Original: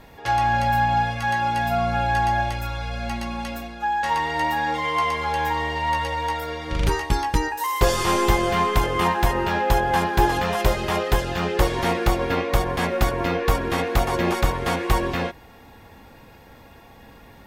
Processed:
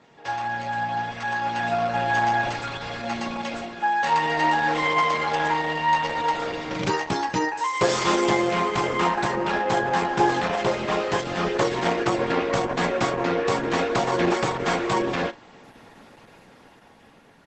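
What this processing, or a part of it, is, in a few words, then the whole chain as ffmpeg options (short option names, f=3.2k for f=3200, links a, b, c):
video call: -filter_complex "[0:a]asplit=3[a][b][c];[a]afade=t=out:st=10.47:d=0.02[d];[b]equalizer=f=8.7k:w=0.58:g=-5,afade=t=in:st=10.47:d=0.02,afade=t=out:st=10.96:d=0.02[e];[c]afade=t=in:st=10.96:d=0.02[f];[d][e][f]amix=inputs=3:normalize=0,highpass=f=140:w=0.5412,highpass=f=140:w=1.3066,asplit=2[g][h];[h]adelay=32,volume=-12dB[i];[g][i]amix=inputs=2:normalize=0,dynaudnorm=f=650:g=5:m=9.5dB,volume=-5.5dB" -ar 48000 -c:a libopus -b:a 12k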